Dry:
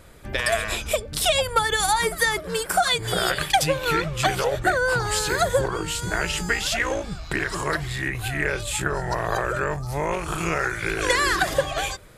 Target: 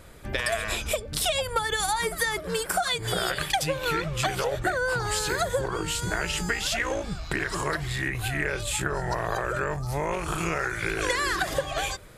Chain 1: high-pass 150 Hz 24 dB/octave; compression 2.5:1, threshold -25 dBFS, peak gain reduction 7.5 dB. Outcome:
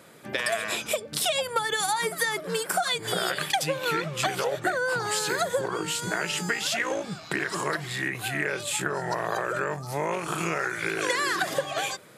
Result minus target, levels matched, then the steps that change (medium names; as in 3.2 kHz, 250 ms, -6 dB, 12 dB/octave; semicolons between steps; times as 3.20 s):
125 Hz band -5.0 dB
remove: high-pass 150 Hz 24 dB/octave